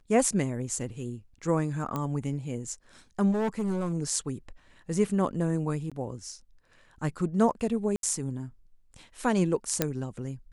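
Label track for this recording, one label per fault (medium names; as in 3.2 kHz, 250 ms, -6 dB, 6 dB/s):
1.960000	1.960000	pop -18 dBFS
3.310000	3.940000	clipped -25 dBFS
5.900000	5.920000	dropout 16 ms
7.960000	8.030000	dropout 72 ms
9.820000	9.820000	pop -8 dBFS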